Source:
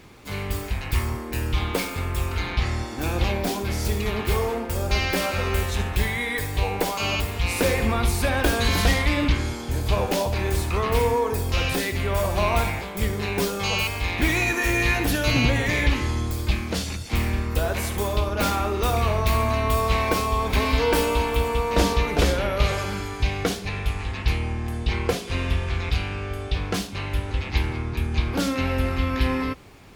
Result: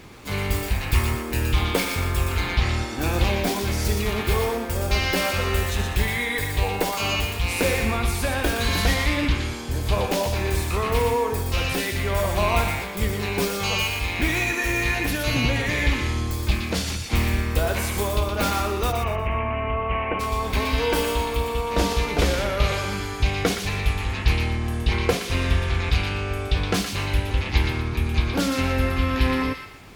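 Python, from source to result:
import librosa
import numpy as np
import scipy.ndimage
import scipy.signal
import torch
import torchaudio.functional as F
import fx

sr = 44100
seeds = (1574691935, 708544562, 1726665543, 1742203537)

y = fx.rider(x, sr, range_db=4, speed_s=2.0)
y = fx.cheby_ripple(y, sr, hz=3000.0, ripple_db=3, at=(18.91, 20.19), fade=0.02)
y = fx.echo_wet_highpass(y, sr, ms=119, feedback_pct=35, hz=1400.0, wet_db=-4.5)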